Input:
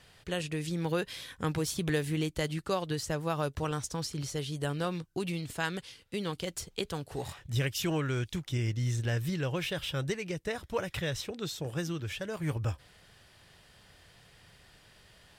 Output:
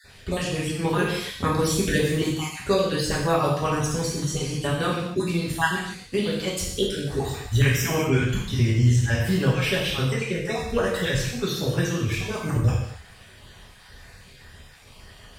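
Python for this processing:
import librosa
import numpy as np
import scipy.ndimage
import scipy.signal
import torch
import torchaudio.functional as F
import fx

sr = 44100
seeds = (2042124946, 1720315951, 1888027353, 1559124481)

y = fx.spec_dropout(x, sr, seeds[0], share_pct=35)
y = fx.low_shelf(y, sr, hz=99.0, db=7.5)
y = fx.rev_gated(y, sr, seeds[1], gate_ms=300, shape='falling', drr_db=-6.0)
y = y * librosa.db_to_amplitude(5.0)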